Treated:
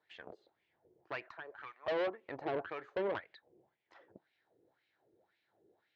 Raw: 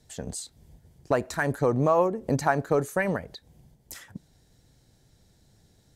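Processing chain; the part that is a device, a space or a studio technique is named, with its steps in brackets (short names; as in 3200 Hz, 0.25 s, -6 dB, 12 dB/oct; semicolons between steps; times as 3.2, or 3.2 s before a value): 1.28–1.88 Chebyshev band-pass 1300–7900 Hz, order 2; wah-wah guitar rig (wah 1.9 Hz 390–2500 Hz, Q 3.9; tube stage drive 38 dB, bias 0.65; speaker cabinet 100–4100 Hz, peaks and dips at 160 Hz -7 dB, 240 Hz -5 dB, 340 Hz +7 dB); gain +6 dB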